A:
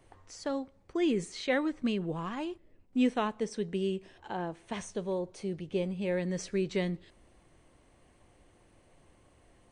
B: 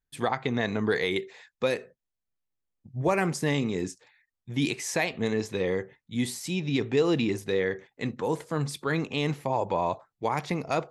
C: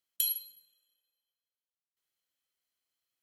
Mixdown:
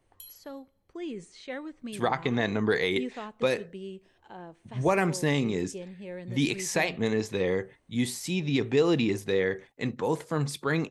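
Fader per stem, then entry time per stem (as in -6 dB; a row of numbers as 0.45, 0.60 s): -8.5, +0.5, -17.5 dB; 0.00, 1.80, 0.00 s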